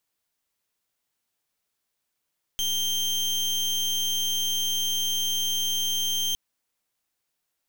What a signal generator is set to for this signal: pulse 3.16 kHz, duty 30% -26 dBFS 3.76 s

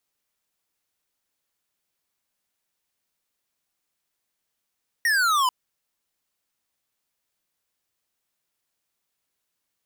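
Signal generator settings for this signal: laser zap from 1.9 kHz, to 980 Hz, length 0.44 s square, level -20.5 dB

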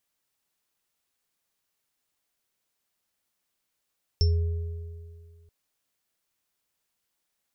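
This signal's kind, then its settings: sine partials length 1.28 s, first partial 83.6 Hz, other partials 414/5380 Hz, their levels -16/-6.5 dB, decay 2.08 s, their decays 2.32/0.20 s, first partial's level -17 dB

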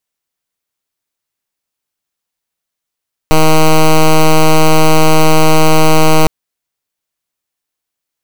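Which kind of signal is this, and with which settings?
pulse 157 Hz, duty 9% -5.5 dBFS 2.96 s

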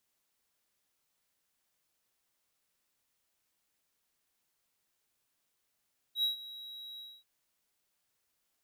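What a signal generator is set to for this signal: ADSR triangle 3.86 kHz, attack 83 ms, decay 125 ms, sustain -17.5 dB, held 0.84 s, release 246 ms -24 dBFS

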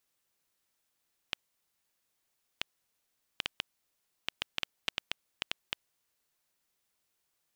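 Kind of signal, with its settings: random clicks 3.2 per s -12.5 dBFS 4.89 s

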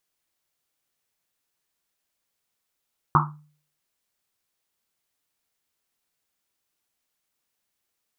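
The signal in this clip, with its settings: Risset drum, pitch 150 Hz, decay 0.49 s, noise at 1.1 kHz, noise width 490 Hz, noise 55%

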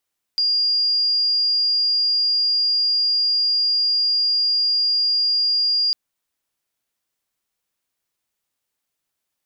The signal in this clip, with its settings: tone sine 4.82 kHz -16 dBFS 5.55 s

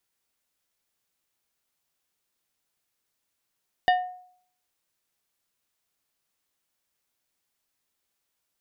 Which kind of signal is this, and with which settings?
glass hit plate, lowest mode 729 Hz, decay 0.60 s, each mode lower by 6 dB, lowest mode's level -15 dB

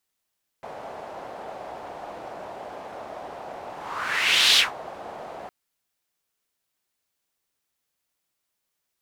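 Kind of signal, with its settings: whoosh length 4.86 s, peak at 3.94 s, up 0.94 s, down 0.17 s, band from 700 Hz, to 3.7 kHz, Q 2.7, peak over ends 21 dB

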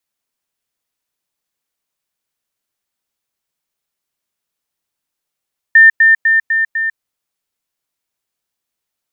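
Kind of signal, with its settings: level ladder 1.8 kHz -2 dBFS, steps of -3 dB, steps 5, 0.15 s 0.10 s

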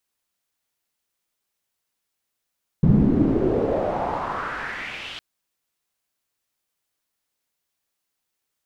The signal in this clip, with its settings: swept filtered noise white, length 2.36 s lowpass, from 170 Hz, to 3.3 kHz, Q 3.5, exponential, gain ramp -34.5 dB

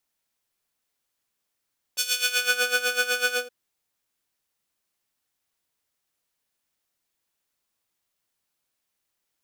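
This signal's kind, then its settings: synth patch with tremolo B4, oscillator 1 square, interval +19 st, sub -8.5 dB, noise -20 dB, filter highpass, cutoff 420 Hz, Q 0.9, filter envelope 3.5 oct, filter decay 0.65 s, attack 19 ms, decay 0.81 s, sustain -5 dB, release 0.15 s, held 1.37 s, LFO 8 Hz, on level 13 dB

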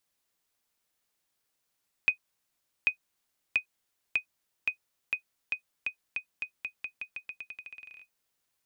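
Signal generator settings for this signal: bouncing ball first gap 0.79 s, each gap 0.87, 2.5 kHz, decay 98 ms -13 dBFS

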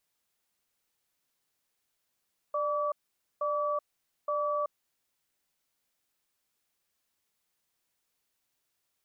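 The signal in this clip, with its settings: cadence 593 Hz, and 1.15 kHz, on 0.38 s, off 0.49 s, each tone -30 dBFS 2.48 s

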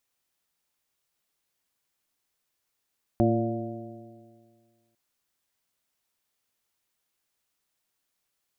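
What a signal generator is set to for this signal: stretched partials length 1.75 s, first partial 113 Hz, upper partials 1/1.5/-14/-2.5/-4.5 dB, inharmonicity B 0.0025, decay 1.90 s, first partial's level -23.5 dB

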